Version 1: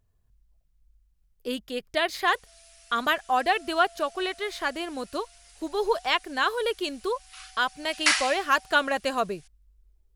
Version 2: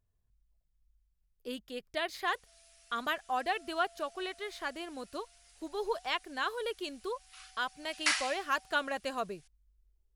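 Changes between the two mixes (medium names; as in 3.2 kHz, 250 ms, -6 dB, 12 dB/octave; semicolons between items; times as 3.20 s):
speech -9.0 dB; background -7.5 dB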